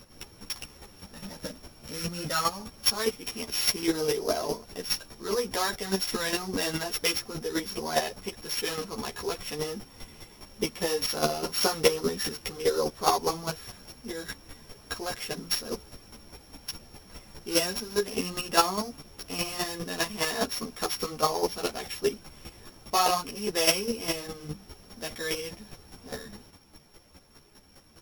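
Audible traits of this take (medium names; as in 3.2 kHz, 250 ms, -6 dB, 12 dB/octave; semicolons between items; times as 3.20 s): a buzz of ramps at a fixed pitch in blocks of 8 samples; chopped level 4.9 Hz, depth 65%, duty 15%; a shimmering, thickened sound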